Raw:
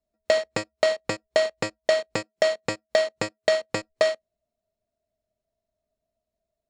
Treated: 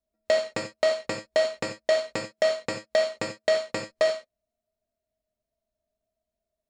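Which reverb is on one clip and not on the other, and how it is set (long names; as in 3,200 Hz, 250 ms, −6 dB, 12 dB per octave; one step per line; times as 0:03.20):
reverb whose tail is shaped and stops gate 110 ms flat, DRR 4 dB
level −4 dB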